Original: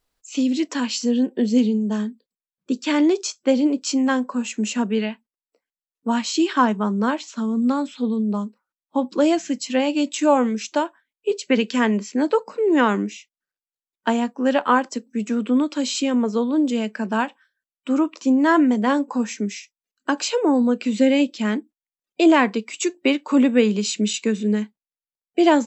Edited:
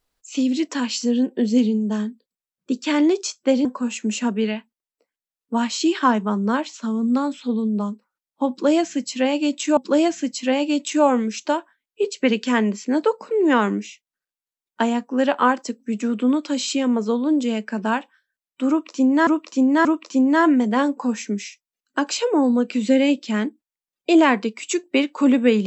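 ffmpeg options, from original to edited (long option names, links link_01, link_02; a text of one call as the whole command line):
ffmpeg -i in.wav -filter_complex "[0:a]asplit=5[link_01][link_02][link_03][link_04][link_05];[link_01]atrim=end=3.652[link_06];[link_02]atrim=start=4.188:end=10.312[link_07];[link_03]atrim=start=9.038:end=18.542[link_08];[link_04]atrim=start=17.958:end=18.542[link_09];[link_05]atrim=start=17.958[link_10];[link_06][link_07]acrossfade=duration=0.004:curve1=hsin:curve2=hsin[link_11];[link_11][link_08]acrossfade=duration=0.004:curve1=hsin:curve2=hsin[link_12];[link_12][link_09]acrossfade=duration=0.004:curve1=hsin:curve2=hsin[link_13];[link_13][link_10]acrossfade=duration=0.004:curve1=hsin:curve2=hsin" out.wav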